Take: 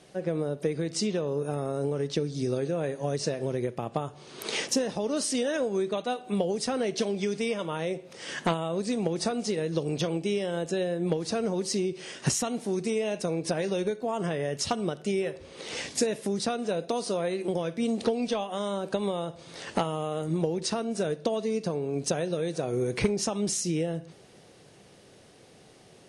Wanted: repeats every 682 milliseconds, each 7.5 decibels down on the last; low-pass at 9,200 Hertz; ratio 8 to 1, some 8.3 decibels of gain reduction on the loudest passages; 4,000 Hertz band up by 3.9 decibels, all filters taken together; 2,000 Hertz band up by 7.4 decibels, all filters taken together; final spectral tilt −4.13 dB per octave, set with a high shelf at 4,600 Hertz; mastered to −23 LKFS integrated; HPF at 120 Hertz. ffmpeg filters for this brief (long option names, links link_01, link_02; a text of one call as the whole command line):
ffmpeg -i in.wav -af "highpass=120,lowpass=9200,equalizer=frequency=2000:width_type=o:gain=9,equalizer=frequency=4000:width_type=o:gain=7,highshelf=frequency=4600:gain=-8,acompressor=threshold=-29dB:ratio=8,aecho=1:1:682|1364|2046|2728|3410:0.422|0.177|0.0744|0.0312|0.0131,volume=10dB" out.wav